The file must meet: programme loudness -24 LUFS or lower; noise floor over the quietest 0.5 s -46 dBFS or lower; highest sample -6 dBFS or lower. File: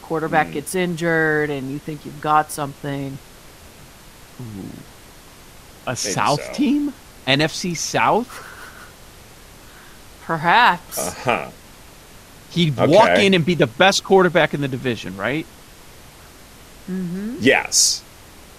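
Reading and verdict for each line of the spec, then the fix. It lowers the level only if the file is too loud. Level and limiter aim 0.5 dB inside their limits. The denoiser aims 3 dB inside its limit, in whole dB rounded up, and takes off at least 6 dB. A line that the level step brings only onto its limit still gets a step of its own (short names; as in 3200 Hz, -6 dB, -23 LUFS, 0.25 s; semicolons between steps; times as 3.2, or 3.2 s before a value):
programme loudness -18.5 LUFS: fail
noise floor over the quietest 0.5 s -43 dBFS: fail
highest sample -1.5 dBFS: fail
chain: gain -6 dB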